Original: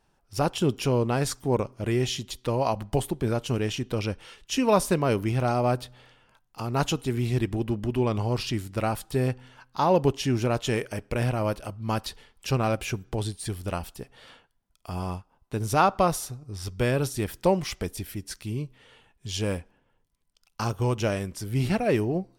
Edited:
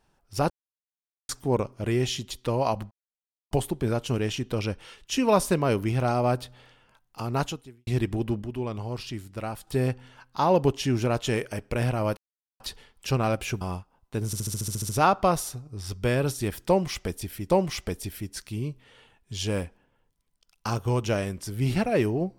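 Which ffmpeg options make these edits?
ffmpeg -i in.wav -filter_complex "[0:a]asplit=20[link_01][link_02][link_03][link_04][link_05][link_06][link_07][link_08][link_09][link_10][link_11][link_12][link_13][link_14][link_15][link_16][link_17][link_18][link_19][link_20];[link_01]atrim=end=0.5,asetpts=PTS-STARTPTS,afade=type=out:start_time=0.496:duration=0.004:curve=hsin[link_21];[link_02]atrim=start=0.5:end=1.29,asetpts=PTS-STARTPTS,volume=0[link_22];[link_03]atrim=start=1.29:end=2.91,asetpts=PTS-STARTPTS,afade=type=in:duration=0.004:curve=hsin,afade=type=out:start_time=1.616:duration=0.004:curve=hsin,apad=pad_dur=0.6[link_23];[link_04]atrim=start=2.91:end=7.27,asetpts=PTS-STARTPTS,afade=type=in:duration=0.004:curve=hsin,afade=type=out:start_time=3.84:duration=0.52:curve=qua[link_24];[link_05]atrim=start=7.27:end=7.822,asetpts=PTS-STARTPTS,afade=type=in:duration=0.004:curve=hsin[link_25];[link_06]atrim=start=7.818:end=9.072,asetpts=PTS-STARTPTS,volume=-6.5dB[link_26];[link_07]atrim=start=9.068:end=11.57,asetpts=PTS-STARTPTS,afade=type=out:start_time=2.498:duration=0.004:curve=hsin[link_27];[link_08]atrim=start=11.57:end=12,asetpts=PTS-STARTPTS,volume=0[link_28];[link_09]atrim=start=12:end=13.012,asetpts=PTS-STARTPTS,afade=type=in:duration=0.004:curve=hsin[link_29];[link_10]atrim=start=14.998:end=15.722[link_30];[link_11]atrim=start=15.648:end=15.722[link_31];[link_12]atrim=start=15.648:end=15.722[link_32];[link_13]atrim=start=15.648:end=15.722[link_33];[link_14]atrim=start=15.648:end=15.722[link_34];[link_15]atrim=start=15.648:end=15.722[link_35];[link_16]atrim=start=15.648:end=15.722[link_36];[link_17]atrim=start=15.648:end=15.722[link_37];[link_18]atrim=start=15.648:end=15.722[link_38];[link_19]atrim=start=15.648:end=18.262[link_39];[link_20]atrim=start=17.438[link_40];[link_21][link_22][link_23][link_24][link_25]concat=n=5:v=0:a=1[link_41];[link_41][link_26]acrossfade=duration=0.004:curve1=hsin:curve2=hsin[link_42];[link_27][link_28][link_29]concat=n=3:v=0:a=1[link_43];[link_42][link_43]acrossfade=duration=0.004:curve1=hsin:curve2=hsin[link_44];[link_44][link_30]acrossfade=duration=0.004:curve1=hsin:curve2=hsin[link_45];[link_45][link_31]acrossfade=duration=0.004:curve1=hsin:curve2=hsin[link_46];[link_46][link_32]acrossfade=duration=0.004:curve1=hsin:curve2=hsin[link_47];[link_47][link_33]acrossfade=duration=0.004:curve1=hsin:curve2=hsin[link_48];[link_48][link_34]acrossfade=duration=0.004:curve1=hsin:curve2=hsin[link_49];[link_49][link_35]acrossfade=duration=0.004:curve1=hsin:curve2=hsin[link_50];[link_50][link_36]acrossfade=duration=0.004:curve1=hsin:curve2=hsin[link_51];[link_51][link_37]acrossfade=duration=0.004:curve1=hsin:curve2=hsin[link_52];[link_52][link_38]acrossfade=duration=0.004:curve1=hsin:curve2=hsin[link_53];[link_53][link_39]acrossfade=duration=0.004:curve1=hsin:curve2=hsin[link_54];[link_54][link_40]acrossfade=duration=0.004:curve1=hsin:curve2=hsin" out.wav

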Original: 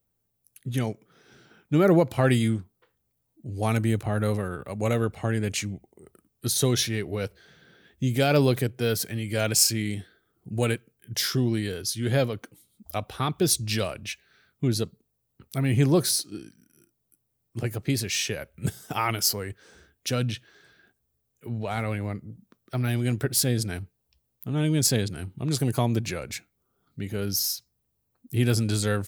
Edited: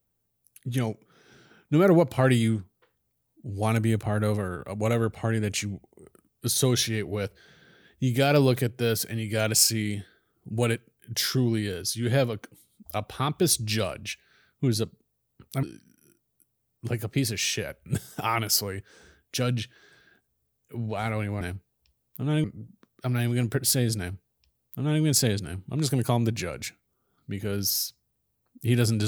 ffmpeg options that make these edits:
ffmpeg -i in.wav -filter_complex "[0:a]asplit=4[link_01][link_02][link_03][link_04];[link_01]atrim=end=15.632[link_05];[link_02]atrim=start=16.348:end=22.132[link_06];[link_03]atrim=start=23.678:end=24.712[link_07];[link_04]atrim=start=22.128[link_08];[link_05][link_06]acrossfade=duration=0.004:curve1=hsin:curve2=hsin[link_09];[link_09][link_07]acrossfade=duration=0.004:curve1=hsin:curve2=hsin[link_10];[link_10][link_08]acrossfade=duration=0.004:curve1=hsin:curve2=hsin" out.wav

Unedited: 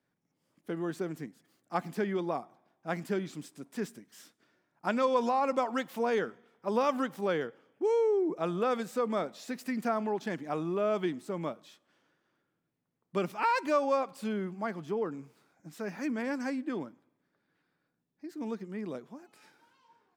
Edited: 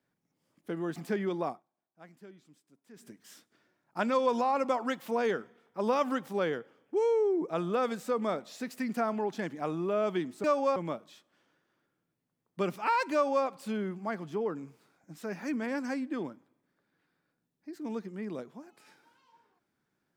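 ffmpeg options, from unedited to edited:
ffmpeg -i in.wav -filter_complex "[0:a]asplit=6[link_01][link_02][link_03][link_04][link_05][link_06];[link_01]atrim=end=0.962[link_07];[link_02]atrim=start=1.838:end=2.51,asetpts=PTS-STARTPTS,afade=type=out:start_time=0.552:duration=0.12:silence=0.112202[link_08];[link_03]atrim=start=2.51:end=3.84,asetpts=PTS-STARTPTS,volume=-19dB[link_09];[link_04]atrim=start=3.84:end=11.322,asetpts=PTS-STARTPTS,afade=type=in:duration=0.12:silence=0.112202[link_10];[link_05]atrim=start=13.688:end=14.012[link_11];[link_06]atrim=start=11.318[link_12];[link_08][link_09][link_10]concat=n=3:v=0:a=1[link_13];[link_07][link_13]acrossfade=duration=0.004:curve1=hsin:curve2=hsin[link_14];[link_14][link_11]acrossfade=duration=0.004:curve1=hsin:curve2=hsin[link_15];[link_15][link_12]acrossfade=duration=0.004:curve1=hsin:curve2=hsin" out.wav

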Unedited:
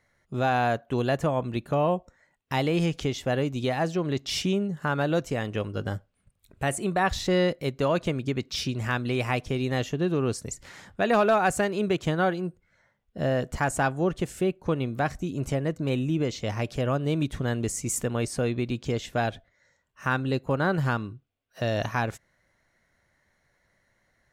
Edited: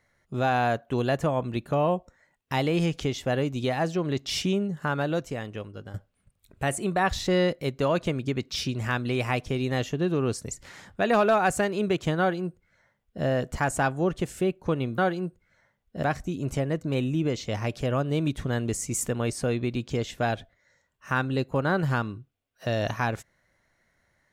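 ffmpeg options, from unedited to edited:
ffmpeg -i in.wav -filter_complex "[0:a]asplit=4[link_01][link_02][link_03][link_04];[link_01]atrim=end=5.94,asetpts=PTS-STARTPTS,afade=type=out:start_time=4.79:duration=1.15:silence=0.223872[link_05];[link_02]atrim=start=5.94:end=14.982,asetpts=PTS-STARTPTS,afade=type=in:duration=0.004:curve=hsin:silence=0.223872[link_06];[link_03]atrim=start=12.188:end=13.242[link_07];[link_04]atrim=start=14.978[link_08];[link_05][link_06]concat=n=2:v=0:a=1[link_09];[link_09][link_07]acrossfade=duration=0.004:curve1=hsin:curve2=hsin[link_10];[link_10][link_08]acrossfade=duration=0.004:curve1=hsin:curve2=hsin" out.wav

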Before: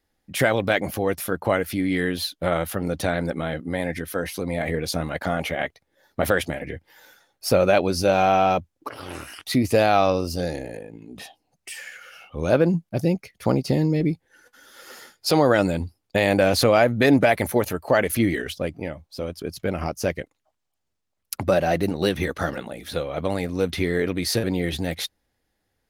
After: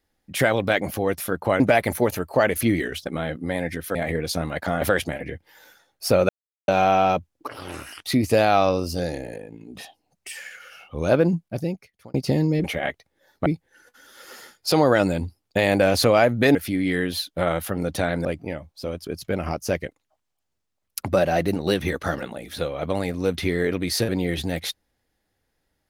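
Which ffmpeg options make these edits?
ffmpeg -i in.wav -filter_complex "[0:a]asplit=12[link_01][link_02][link_03][link_04][link_05][link_06][link_07][link_08][link_09][link_10][link_11][link_12];[link_01]atrim=end=1.602[link_13];[link_02]atrim=start=17.138:end=18.602[link_14];[link_03]atrim=start=3.298:end=4.192[link_15];[link_04]atrim=start=4.538:end=5.402[link_16];[link_05]atrim=start=6.218:end=7.7,asetpts=PTS-STARTPTS,afade=type=out:start_time=1.478:duration=0.004:curve=hsin[link_17];[link_06]atrim=start=7.7:end=8.09,asetpts=PTS-STARTPTS,volume=0[link_18];[link_07]atrim=start=8.09:end=13.55,asetpts=PTS-STARTPTS,afade=type=in:duration=0.004:curve=hsin,afade=type=out:start_time=4.59:duration=0.87[link_19];[link_08]atrim=start=13.55:end=14.052,asetpts=PTS-STARTPTS,afade=type=in:duration=0.004:curve=hsin[link_20];[link_09]atrim=start=5.398:end=6.222[link_21];[link_10]atrim=start=14.048:end=17.142[link_22];[link_11]atrim=start=1.598:end=3.302[link_23];[link_12]atrim=start=18.598[link_24];[link_13][link_14]acrossfade=duration=0.004:curve1=hsin:curve2=hsin[link_25];[link_25][link_15]acrossfade=duration=0.004:curve1=hsin:curve2=hsin[link_26];[link_26][link_16]acrossfade=duration=0.004:curve1=hsin:curve2=hsin[link_27];[link_17][link_18][link_19][link_20]concat=n=4:v=0:a=1[link_28];[link_27][link_28]acrossfade=duration=0.004:curve1=hsin:curve2=hsin[link_29];[link_29][link_21]acrossfade=duration=0.004:curve1=hsin:curve2=hsin[link_30];[link_30][link_22]acrossfade=duration=0.004:curve1=hsin:curve2=hsin[link_31];[link_31][link_23]acrossfade=duration=0.004:curve1=hsin:curve2=hsin[link_32];[link_32][link_24]acrossfade=duration=0.004:curve1=hsin:curve2=hsin" out.wav

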